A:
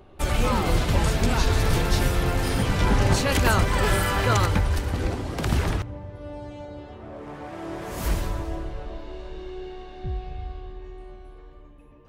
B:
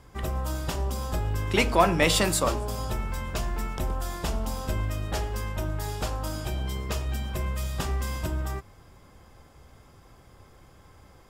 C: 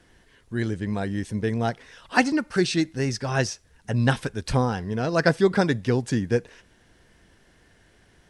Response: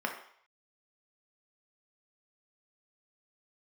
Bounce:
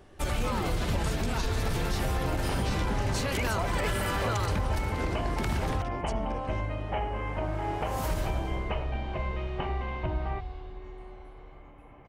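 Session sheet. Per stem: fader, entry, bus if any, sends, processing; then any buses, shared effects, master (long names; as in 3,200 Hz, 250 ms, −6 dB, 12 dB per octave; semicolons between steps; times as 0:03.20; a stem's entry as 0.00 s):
−4.0 dB, 0.00 s, no send, no processing
+2.5 dB, 1.80 s, no send, speech leveller 0.5 s; Chebyshev low-pass with heavy ripple 3,100 Hz, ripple 9 dB
−4.5 dB, 0.00 s, no send, high-pass filter 120 Hz; volume swells 146 ms; downward compressor, threshold −32 dBFS, peak gain reduction 15 dB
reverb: not used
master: brickwall limiter −20 dBFS, peak gain reduction 9.5 dB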